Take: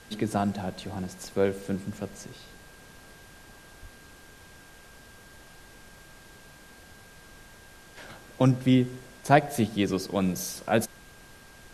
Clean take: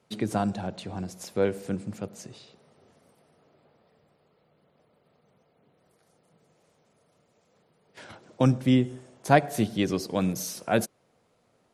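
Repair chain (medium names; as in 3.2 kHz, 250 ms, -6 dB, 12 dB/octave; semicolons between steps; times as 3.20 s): band-stop 1.6 kHz, Q 30; de-plosive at 3.81 s; noise print and reduce 16 dB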